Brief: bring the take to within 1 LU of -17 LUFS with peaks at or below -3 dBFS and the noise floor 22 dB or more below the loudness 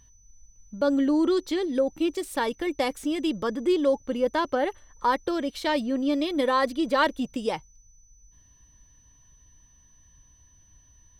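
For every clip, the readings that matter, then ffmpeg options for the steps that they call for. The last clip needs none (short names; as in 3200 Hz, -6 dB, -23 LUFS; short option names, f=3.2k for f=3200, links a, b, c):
steady tone 6000 Hz; tone level -58 dBFS; loudness -26.0 LUFS; peak -10.0 dBFS; loudness target -17.0 LUFS
-> -af "bandreject=f=6k:w=30"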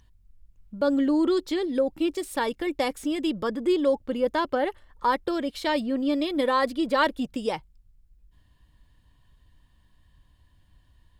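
steady tone none; loudness -26.0 LUFS; peak -10.0 dBFS; loudness target -17.0 LUFS
-> -af "volume=9dB,alimiter=limit=-3dB:level=0:latency=1"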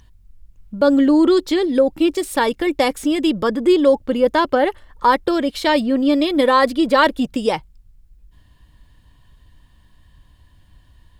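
loudness -17.0 LUFS; peak -3.0 dBFS; noise floor -52 dBFS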